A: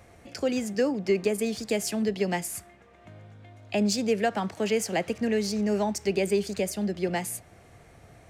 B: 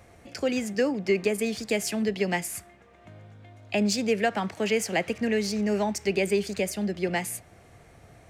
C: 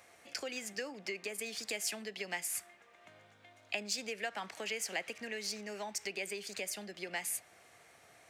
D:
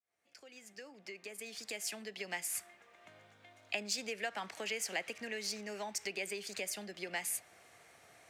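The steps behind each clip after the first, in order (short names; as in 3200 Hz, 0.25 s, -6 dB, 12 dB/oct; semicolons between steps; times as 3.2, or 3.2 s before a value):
dynamic EQ 2200 Hz, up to +5 dB, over -48 dBFS, Q 1.4
compressor 3:1, threshold -31 dBFS, peak gain reduction 9.5 dB; HPF 1400 Hz 6 dB/oct
opening faded in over 2.70 s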